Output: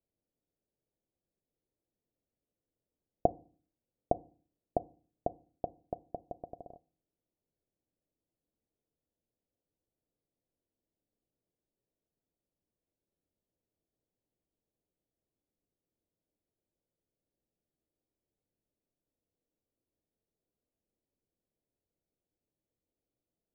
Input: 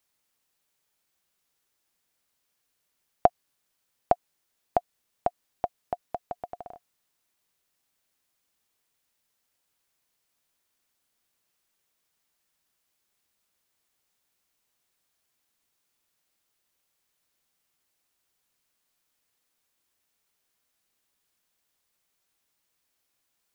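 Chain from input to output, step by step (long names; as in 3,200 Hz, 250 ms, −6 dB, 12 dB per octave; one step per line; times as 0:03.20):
inverse Chebyshev low-pass filter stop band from 3,300 Hz, stop band 80 dB
convolution reverb RT60 0.45 s, pre-delay 3 ms, DRR 17.5 dB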